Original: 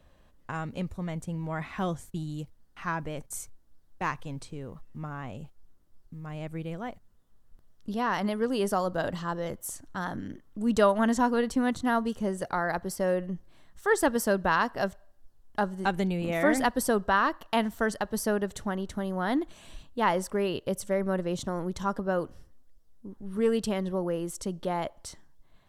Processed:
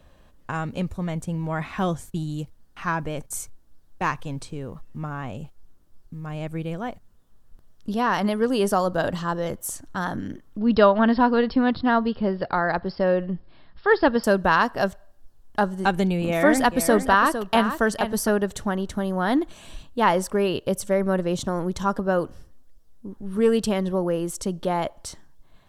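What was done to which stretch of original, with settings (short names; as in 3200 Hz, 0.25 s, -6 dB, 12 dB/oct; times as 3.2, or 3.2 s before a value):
10.58–14.24 brick-wall FIR low-pass 5400 Hz
16.26–18.29 echo 0.456 s -9.5 dB
whole clip: notch 2000 Hz, Q 20; gain +6 dB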